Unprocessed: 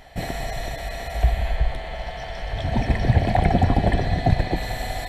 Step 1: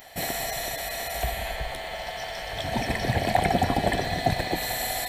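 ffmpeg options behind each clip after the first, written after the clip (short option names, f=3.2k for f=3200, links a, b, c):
-af "aemphasis=mode=production:type=bsi"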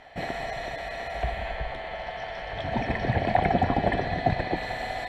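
-af "lowpass=2.4k"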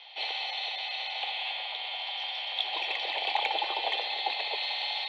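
-af "highpass=f=390:t=q:w=0.5412,highpass=f=390:t=q:w=1.307,lowpass=f=3.6k:t=q:w=0.5176,lowpass=f=3.6k:t=q:w=0.7071,lowpass=f=3.6k:t=q:w=1.932,afreqshift=92,aexciter=amount=12.7:drive=8:freq=2.8k,volume=-7.5dB"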